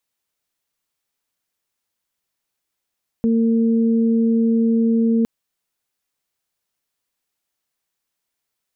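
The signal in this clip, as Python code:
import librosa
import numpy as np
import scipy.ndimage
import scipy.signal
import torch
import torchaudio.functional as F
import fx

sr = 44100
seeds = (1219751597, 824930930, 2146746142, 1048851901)

y = fx.additive_steady(sr, length_s=2.01, hz=228.0, level_db=-14.0, upper_db=(-9.5,))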